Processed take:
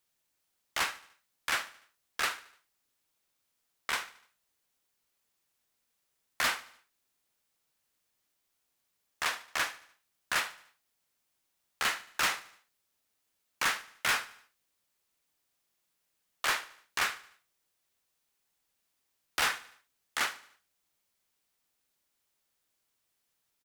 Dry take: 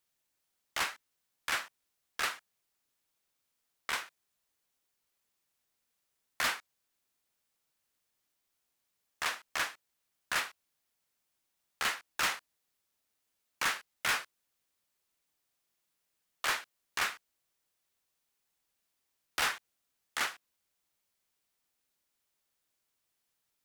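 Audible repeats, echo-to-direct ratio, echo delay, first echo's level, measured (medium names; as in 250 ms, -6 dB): 3, -17.5 dB, 74 ms, -18.5 dB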